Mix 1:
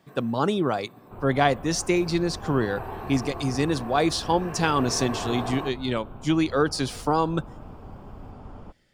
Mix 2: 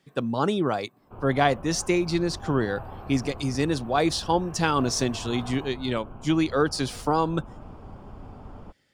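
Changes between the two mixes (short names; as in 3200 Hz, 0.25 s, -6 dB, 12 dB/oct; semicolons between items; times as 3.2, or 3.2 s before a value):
first sound -12.0 dB; reverb: off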